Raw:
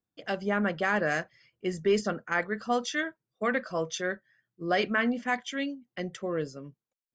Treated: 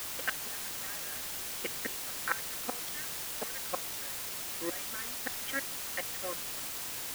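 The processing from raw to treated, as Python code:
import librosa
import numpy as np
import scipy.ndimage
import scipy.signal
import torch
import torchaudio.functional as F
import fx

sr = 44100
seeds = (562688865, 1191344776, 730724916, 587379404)

y = fx.backlash(x, sr, play_db=-37.0)
y = fx.gate_flip(y, sr, shuts_db=-24.0, range_db=-31)
y = fx.bandpass_edges(y, sr, low_hz=360.0, high_hz=6500.0)
y = y + 0.65 * np.pad(y, (int(3.8 * sr / 1000.0), 0))[:len(y)]
y = fx.rider(y, sr, range_db=10, speed_s=0.5)
y = fx.peak_eq(y, sr, hz=1700.0, db=11.0, octaves=1.6)
y = fx.quant_dither(y, sr, seeds[0], bits=6, dither='triangular')
y = y * 10.0 ** (-3.0 / 20.0)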